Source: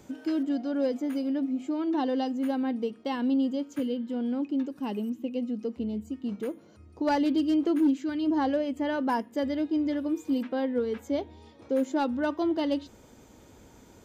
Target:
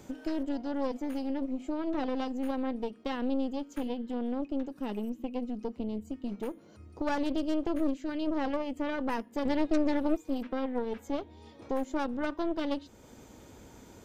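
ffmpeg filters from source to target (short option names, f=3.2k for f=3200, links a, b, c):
-filter_complex "[0:a]asettb=1/sr,asplit=3[a][b][c];[a]atrim=end=9.454[d];[b]atrim=start=9.45:end=10.17,asetpts=PTS-STARTPTS,afade=t=in:d=0.004:c=qsin,afade=t=out:st=0.716:d=0.004:c=qsin,acontrast=89[e];[c]atrim=start=10.166[f];[d][e]acrossfade=d=0.004:c1=hsin:c2=qsin[g];[g][f]acrossfade=d=0.004:c1=qsin:c2=hsin,aeval=exprs='0.237*(cos(1*acos(clip(val(0)/0.237,-1,1)))-cos(1*PI/2))+0.106*(cos(4*acos(clip(val(0)/0.237,-1,1)))-cos(4*PI/2))+0.0473*(cos(6*acos(clip(val(0)/0.237,-1,1)))-cos(6*PI/2))+0.0211*(cos(8*acos(clip(val(0)/0.237,-1,1)))-cos(8*PI/2))':c=same,acompressor=threshold=-42dB:ratio=1.5,volume=1.5dB"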